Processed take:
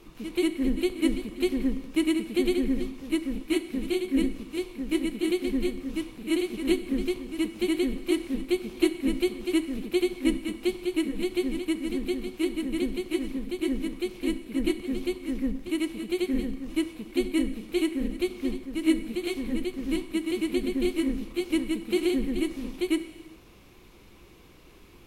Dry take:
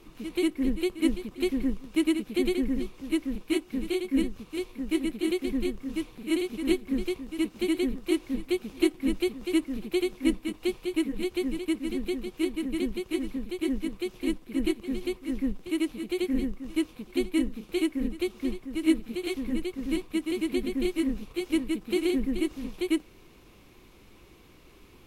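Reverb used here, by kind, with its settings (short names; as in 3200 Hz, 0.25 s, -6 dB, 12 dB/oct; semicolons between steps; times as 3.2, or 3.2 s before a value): non-linear reverb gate 0.43 s falling, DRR 10.5 dB; gain +1 dB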